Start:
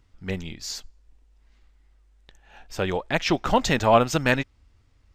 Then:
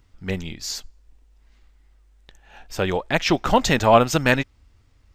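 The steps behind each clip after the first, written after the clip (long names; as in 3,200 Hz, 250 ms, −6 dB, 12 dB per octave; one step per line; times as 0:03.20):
high-shelf EQ 12,000 Hz +5.5 dB
level +3 dB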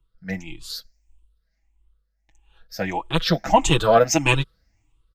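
rippled gain that drifts along the octave scale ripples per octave 0.65, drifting +1.6 Hz, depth 17 dB
comb filter 6.1 ms, depth 74%
multiband upward and downward expander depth 40%
level −5 dB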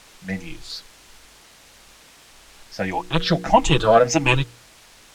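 hum removal 59.64 Hz, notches 8
in parallel at −6 dB: bit-depth reduction 6 bits, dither triangular
on the sum: high-frequency loss of the air 56 metres
level −2 dB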